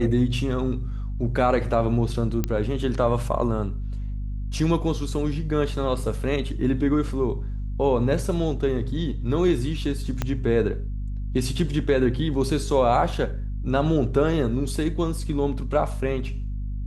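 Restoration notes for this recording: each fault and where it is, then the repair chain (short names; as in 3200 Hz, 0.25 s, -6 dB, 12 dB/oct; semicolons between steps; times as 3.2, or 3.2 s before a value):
hum 50 Hz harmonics 5 -29 dBFS
2.44 pop -11 dBFS
10.22 pop -11 dBFS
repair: de-click; de-hum 50 Hz, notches 5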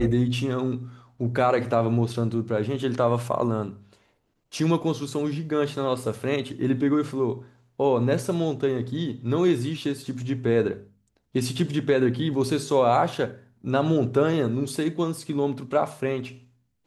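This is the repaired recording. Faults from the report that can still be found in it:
10.22 pop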